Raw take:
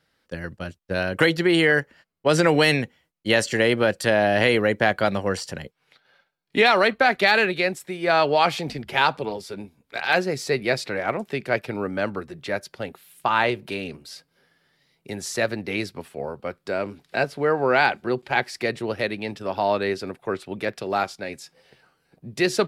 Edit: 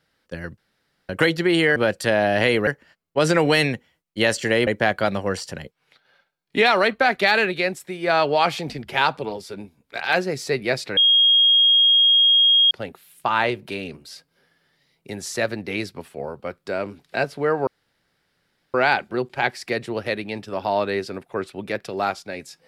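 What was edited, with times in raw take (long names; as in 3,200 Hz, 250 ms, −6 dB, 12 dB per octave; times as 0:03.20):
0:00.58–0:01.09: fill with room tone
0:03.76–0:04.67: move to 0:01.76
0:10.97–0:12.71: beep over 3,260 Hz −12 dBFS
0:17.67: splice in room tone 1.07 s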